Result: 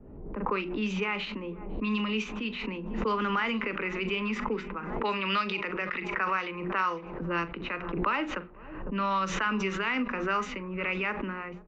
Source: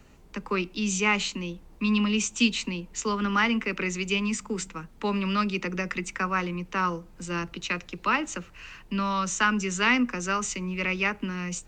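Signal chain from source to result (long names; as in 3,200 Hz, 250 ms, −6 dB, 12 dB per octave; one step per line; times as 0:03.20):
0:04.76–0:07.22: spectral tilt +2.5 dB per octave
brickwall limiter −20.5 dBFS, peak gain reduction 11.5 dB
Chebyshev low-pass filter 5,000 Hz, order 2
bass and treble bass −9 dB, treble −14 dB
mains-hum notches 60/120/180/240/300/360 Hz
double-tracking delay 42 ms −14 dB
repeating echo 503 ms, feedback 51%, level −21.5 dB
low-pass that shuts in the quiet parts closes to 340 Hz, open at −26.5 dBFS
background raised ahead of every attack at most 48 dB per second
level +3.5 dB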